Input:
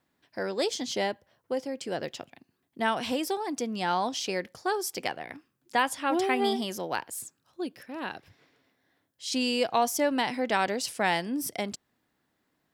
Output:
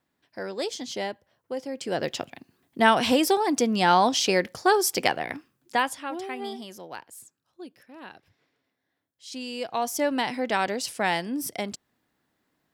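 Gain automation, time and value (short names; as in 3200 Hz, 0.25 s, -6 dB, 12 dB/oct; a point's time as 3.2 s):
1.53 s -2 dB
2.19 s +8.5 dB
5.31 s +8.5 dB
5.91 s -0.5 dB
6.16 s -8 dB
9.47 s -8 dB
10.03 s +1 dB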